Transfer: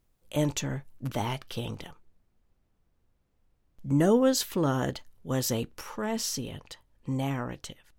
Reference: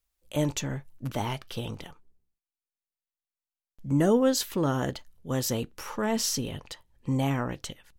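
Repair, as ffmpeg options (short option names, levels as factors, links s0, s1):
-af "agate=range=0.0891:threshold=0.000794,asetnsamples=n=441:p=0,asendcmd='5.81 volume volume 3.5dB',volume=1"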